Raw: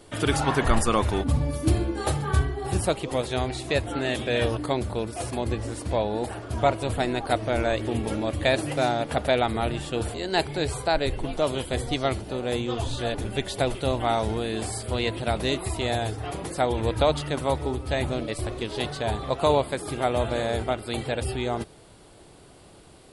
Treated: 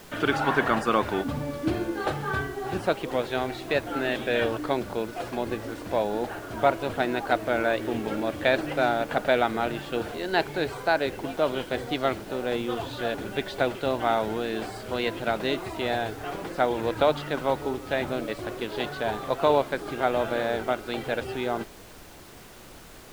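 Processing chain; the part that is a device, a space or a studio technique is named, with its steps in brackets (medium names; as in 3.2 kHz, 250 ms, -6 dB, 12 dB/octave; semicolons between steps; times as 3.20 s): horn gramophone (band-pass 190–3400 Hz; peaking EQ 1.5 kHz +6.5 dB 0.27 oct; wow and flutter 19 cents; pink noise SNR 20 dB)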